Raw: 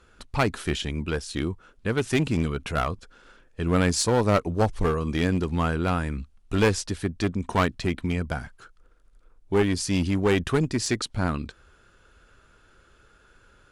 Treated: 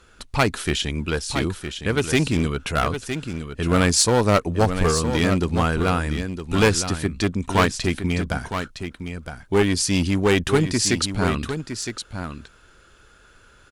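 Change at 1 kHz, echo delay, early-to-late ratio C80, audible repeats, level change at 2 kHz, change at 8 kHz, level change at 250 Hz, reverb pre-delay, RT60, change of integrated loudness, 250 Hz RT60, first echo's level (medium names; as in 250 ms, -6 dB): +4.5 dB, 962 ms, no reverb, 1, +5.5 dB, +8.5 dB, +3.5 dB, no reverb, no reverb, +4.0 dB, no reverb, -8.5 dB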